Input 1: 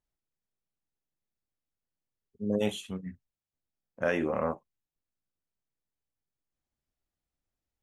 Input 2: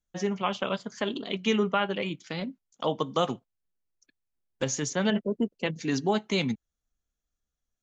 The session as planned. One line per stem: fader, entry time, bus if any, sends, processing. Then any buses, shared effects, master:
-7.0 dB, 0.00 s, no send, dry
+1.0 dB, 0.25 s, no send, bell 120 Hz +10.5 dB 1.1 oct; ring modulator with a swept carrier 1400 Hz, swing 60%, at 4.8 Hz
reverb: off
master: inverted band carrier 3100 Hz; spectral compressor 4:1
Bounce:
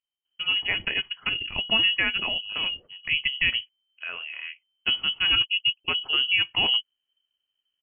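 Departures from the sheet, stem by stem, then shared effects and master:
stem 2: missing ring modulator with a swept carrier 1400 Hz, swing 60%, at 4.8 Hz; master: missing spectral compressor 4:1

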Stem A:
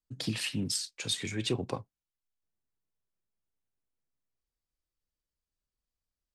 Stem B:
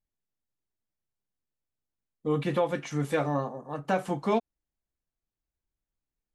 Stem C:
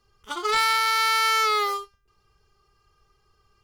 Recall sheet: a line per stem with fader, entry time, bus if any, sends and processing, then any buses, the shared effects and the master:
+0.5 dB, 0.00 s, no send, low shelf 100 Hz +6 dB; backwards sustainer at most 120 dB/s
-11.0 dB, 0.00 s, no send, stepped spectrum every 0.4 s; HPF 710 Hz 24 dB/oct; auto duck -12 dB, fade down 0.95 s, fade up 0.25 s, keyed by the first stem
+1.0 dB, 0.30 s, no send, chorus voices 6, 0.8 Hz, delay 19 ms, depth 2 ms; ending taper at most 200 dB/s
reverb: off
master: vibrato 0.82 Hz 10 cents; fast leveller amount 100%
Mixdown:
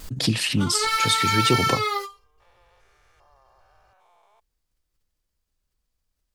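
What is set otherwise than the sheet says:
stem A +0.5 dB -> +9.0 dB; stem B -11.0 dB -> -20.5 dB; master: missing fast leveller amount 100%

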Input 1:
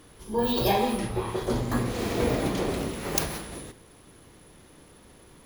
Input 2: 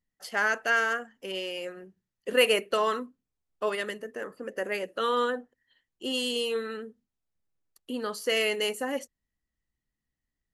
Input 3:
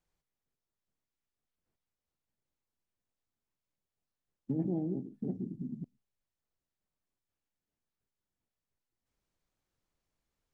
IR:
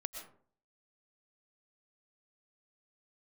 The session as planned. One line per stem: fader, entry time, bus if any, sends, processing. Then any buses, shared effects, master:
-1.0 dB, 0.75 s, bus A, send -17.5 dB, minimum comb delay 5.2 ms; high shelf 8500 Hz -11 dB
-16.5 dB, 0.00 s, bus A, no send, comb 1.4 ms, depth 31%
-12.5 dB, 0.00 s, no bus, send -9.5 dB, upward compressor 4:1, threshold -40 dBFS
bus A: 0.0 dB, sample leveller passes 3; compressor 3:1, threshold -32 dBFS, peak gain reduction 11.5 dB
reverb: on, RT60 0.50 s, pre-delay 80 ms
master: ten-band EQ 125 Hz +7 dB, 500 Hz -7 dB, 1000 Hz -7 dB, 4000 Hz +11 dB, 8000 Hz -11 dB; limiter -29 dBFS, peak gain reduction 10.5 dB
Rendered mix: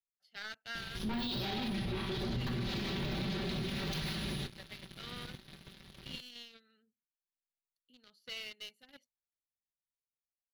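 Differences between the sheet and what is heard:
stem 2 -16.5 dB -> -26.0 dB; stem 3: muted

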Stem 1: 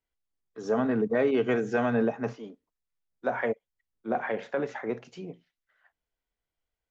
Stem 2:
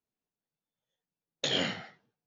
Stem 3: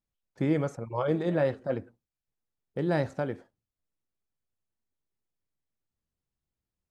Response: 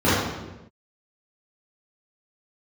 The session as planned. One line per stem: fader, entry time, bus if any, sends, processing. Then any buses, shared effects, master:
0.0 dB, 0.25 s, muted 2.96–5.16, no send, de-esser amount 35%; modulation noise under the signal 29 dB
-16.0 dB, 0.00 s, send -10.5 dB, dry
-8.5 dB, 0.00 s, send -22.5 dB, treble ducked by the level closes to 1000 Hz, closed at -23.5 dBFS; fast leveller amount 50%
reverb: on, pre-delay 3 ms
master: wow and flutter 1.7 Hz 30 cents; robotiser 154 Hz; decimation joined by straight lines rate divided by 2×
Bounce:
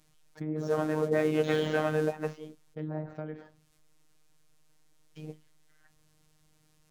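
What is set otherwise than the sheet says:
stem 1: entry 0.25 s -> 0.00 s; stem 3: send off

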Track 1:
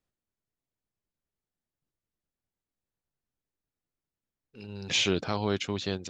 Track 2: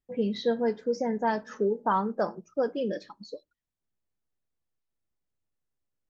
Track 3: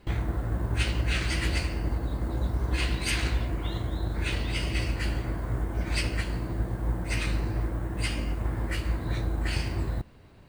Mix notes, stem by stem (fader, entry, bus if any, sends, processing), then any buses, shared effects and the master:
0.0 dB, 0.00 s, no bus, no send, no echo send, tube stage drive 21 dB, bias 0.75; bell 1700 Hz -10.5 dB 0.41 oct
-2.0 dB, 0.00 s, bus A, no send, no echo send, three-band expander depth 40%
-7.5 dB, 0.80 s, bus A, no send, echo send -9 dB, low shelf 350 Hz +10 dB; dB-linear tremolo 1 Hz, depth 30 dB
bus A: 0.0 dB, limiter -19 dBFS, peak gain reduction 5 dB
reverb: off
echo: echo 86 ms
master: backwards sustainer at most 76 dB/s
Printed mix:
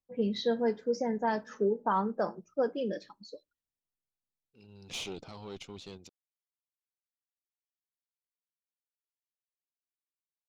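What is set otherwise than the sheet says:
stem 1 0.0 dB -> -7.5 dB; stem 3: muted; master: missing backwards sustainer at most 76 dB/s

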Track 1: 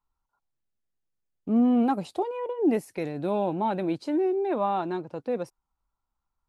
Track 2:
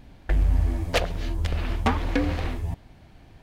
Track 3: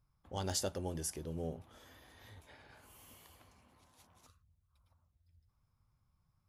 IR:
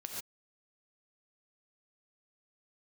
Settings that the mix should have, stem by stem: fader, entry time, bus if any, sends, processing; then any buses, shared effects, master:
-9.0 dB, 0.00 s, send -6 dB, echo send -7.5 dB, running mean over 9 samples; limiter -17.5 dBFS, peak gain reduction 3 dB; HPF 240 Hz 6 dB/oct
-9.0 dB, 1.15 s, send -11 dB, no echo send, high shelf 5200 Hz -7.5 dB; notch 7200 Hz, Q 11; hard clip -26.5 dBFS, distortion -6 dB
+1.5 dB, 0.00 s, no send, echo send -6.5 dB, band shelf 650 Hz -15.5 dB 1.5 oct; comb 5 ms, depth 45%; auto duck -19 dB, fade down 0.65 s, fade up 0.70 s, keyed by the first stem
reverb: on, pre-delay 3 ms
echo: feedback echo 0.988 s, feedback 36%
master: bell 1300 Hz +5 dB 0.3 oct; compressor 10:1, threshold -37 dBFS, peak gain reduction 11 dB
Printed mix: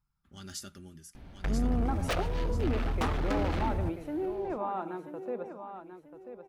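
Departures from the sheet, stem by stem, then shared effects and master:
stem 2 -9.0 dB -> -2.5 dB; stem 3 +1.5 dB -> -5.0 dB; master: missing compressor 10:1, threshold -37 dBFS, peak gain reduction 11 dB

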